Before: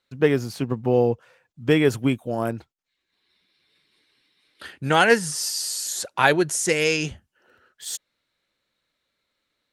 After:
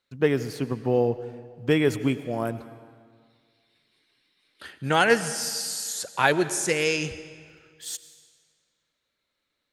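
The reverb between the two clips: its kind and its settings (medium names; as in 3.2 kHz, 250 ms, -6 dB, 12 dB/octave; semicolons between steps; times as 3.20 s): algorithmic reverb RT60 1.9 s, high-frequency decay 0.9×, pre-delay 65 ms, DRR 13.5 dB; trim -3 dB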